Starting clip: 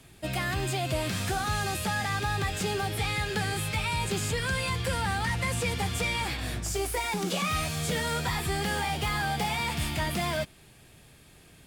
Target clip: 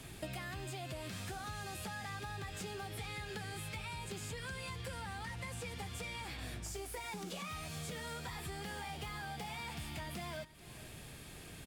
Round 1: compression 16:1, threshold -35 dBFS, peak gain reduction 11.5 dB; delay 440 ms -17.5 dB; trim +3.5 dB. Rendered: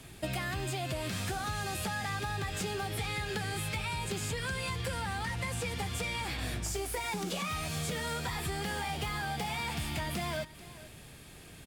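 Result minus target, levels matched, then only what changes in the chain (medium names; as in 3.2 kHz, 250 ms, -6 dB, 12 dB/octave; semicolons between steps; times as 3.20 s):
compression: peak gain reduction -8.5 dB
change: compression 16:1, threshold -44 dBFS, peak gain reduction 20 dB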